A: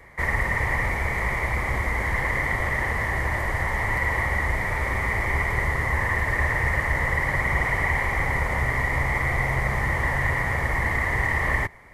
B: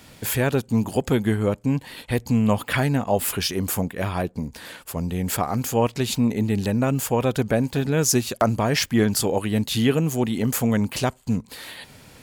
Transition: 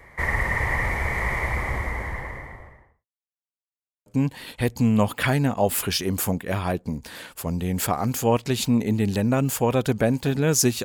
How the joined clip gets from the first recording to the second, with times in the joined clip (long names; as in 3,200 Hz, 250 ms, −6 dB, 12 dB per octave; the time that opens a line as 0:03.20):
A
0:01.36–0:03.06: fade out and dull
0:03.06–0:04.06: silence
0:04.06: continue with B from 0:01.56